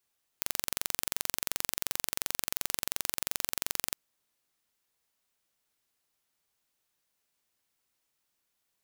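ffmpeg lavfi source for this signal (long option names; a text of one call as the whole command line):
ffmpeg -f lavfi -i "aevalsrc='0.75*eq(mod(n,1934),0)':duration=3.52:sample_rate=44100" out.wav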